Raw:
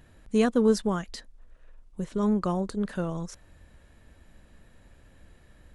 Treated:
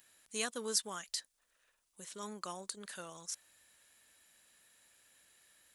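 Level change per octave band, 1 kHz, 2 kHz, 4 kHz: −11.0, −5.5, +1.5 decibels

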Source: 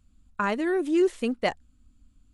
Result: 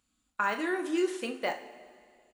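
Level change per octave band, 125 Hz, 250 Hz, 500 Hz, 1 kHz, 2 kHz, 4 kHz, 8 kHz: below −10 dB, −7.0 dB, −6.5 dB, −2.0 dB, −0.5 dB, −2.5 dB, +0.5 dB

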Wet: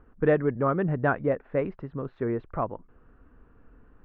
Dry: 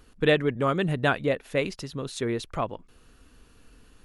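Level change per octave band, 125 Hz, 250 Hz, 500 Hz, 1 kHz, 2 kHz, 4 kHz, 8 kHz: 0.0 dB, 0.0 dB, 0.0 dB, −0.5 dB, −5.0 dB, below −25 dB, below −35 dB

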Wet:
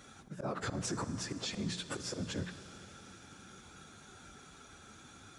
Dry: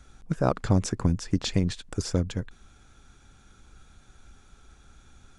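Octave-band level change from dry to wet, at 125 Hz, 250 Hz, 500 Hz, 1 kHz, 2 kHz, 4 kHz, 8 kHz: −15.0, −12.0, −11.0, −8.5, −2.5, −4.5, −4.0 decibels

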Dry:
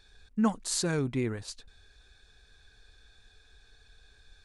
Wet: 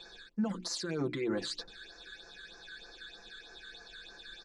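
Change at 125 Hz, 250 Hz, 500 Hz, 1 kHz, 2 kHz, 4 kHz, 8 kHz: −8.5, −5.0, −2.5, −8.5, −0.5, +0.5, −9.0 decibels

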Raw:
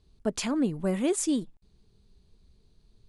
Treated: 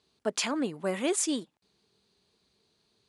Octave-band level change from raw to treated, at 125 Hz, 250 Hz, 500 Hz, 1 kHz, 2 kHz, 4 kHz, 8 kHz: −9.0, −5.0, −1.0, +2.5, +4.0, +4.0, +2.0 decibels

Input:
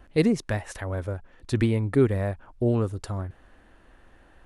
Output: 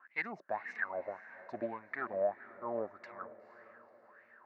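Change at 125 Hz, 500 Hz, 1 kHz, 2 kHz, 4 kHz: −35.0 dB, −10.5 dB, −1.0 dB, −2.0 dB, below −20 dB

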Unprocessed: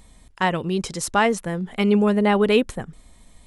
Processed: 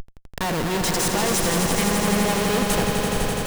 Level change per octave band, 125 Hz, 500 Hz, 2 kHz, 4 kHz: +2.5, −2.5, +0.5, +5.5 decibels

